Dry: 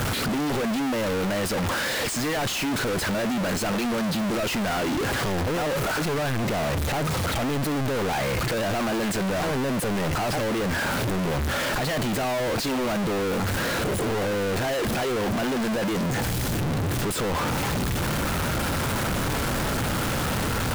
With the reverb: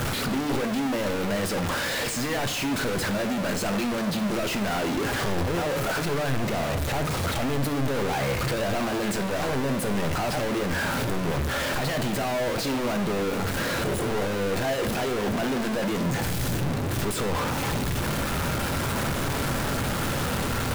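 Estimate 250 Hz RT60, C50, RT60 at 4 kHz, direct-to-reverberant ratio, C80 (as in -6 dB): 1.1 s, 11.5 dB, 0.65 s, 7.0 dB, 14.0 dB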